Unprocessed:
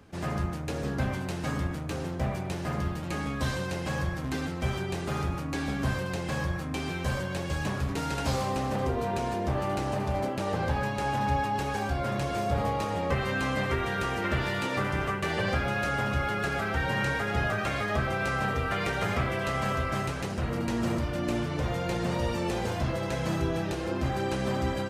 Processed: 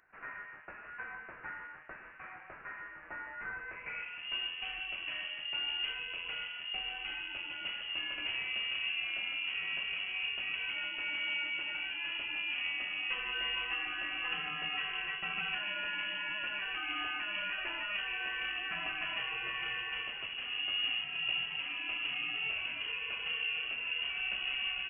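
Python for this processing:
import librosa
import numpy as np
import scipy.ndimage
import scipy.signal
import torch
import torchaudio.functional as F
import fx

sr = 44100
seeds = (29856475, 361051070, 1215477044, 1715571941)

y = fx.filter_sweep_highpass(x, sr, from_hz=1500.0, to_hz=260.0, start_s=3.63, end_s=4.36, q=2.2)
y = fx.freq_invert(y, sr, carrier_hz=3100)
y = y * librosa.db_to_amplitude(-9.0)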